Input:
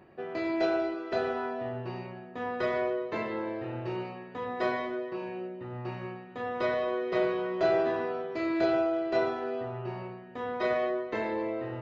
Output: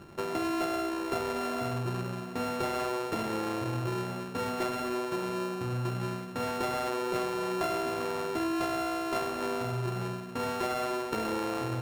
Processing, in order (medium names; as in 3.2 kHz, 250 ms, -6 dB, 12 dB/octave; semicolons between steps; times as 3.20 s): sorted samples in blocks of 32 samples; tilt EQ -2 dB/octave; compression 6:1, threshold -33 dBFS, peak gain reduction 11.5 dB; trim +4.5 dB